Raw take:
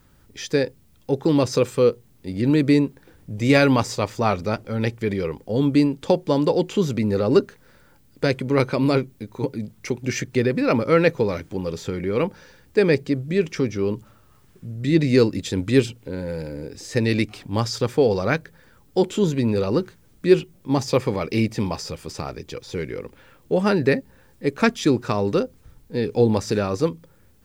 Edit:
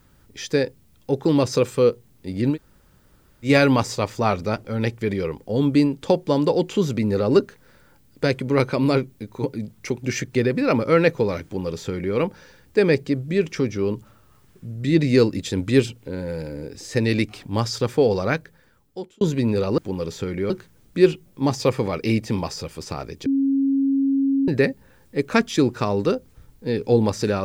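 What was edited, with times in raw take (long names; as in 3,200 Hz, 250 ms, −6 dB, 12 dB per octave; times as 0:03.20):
0:02.53–0:03.47: fill with room tone, crossfade 0.10 s
0:11.44–0:12.16: duplicate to 0:19.78
0:18.21–0:19.21: fade out
0:22.54–0:23.76: beep over 273 Hz −16.5 dBFS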